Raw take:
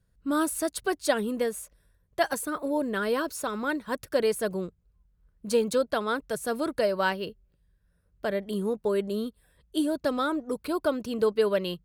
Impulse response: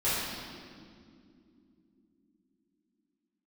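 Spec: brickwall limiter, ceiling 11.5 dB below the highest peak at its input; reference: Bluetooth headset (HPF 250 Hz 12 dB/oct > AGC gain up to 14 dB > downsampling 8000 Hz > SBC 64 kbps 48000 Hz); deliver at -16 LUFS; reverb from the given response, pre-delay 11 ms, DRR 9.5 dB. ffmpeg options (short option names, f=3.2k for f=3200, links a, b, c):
-filter_complex "[0:a]alimiter=limit=-21.5dB:level=0:latency=1,asplit=2[a][b];[1:a]atrim=start_sample=2205,adelay=11[c];[b][c]afir=irnorm=-1:irlink=0,volume=-20.5dB[d];[a][d]amix=inputs=2:normalize=0,highpass=250,dynaudnorm=m=14dB,aresample=8000,aresample=44100,volume=16.5dB" -ar 48000 -c:a sbc -b:a 64k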